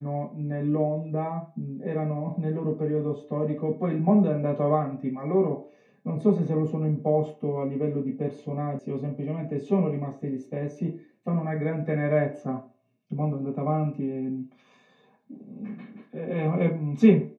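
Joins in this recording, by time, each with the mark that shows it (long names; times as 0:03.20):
0:08.79: cut off before it has died away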